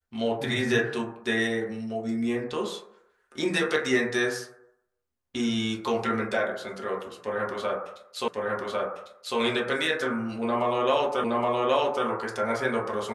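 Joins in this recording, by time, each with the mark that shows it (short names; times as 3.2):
8.28 repeat of the last 1.1 s
11.24 repeat of the last 0.82 s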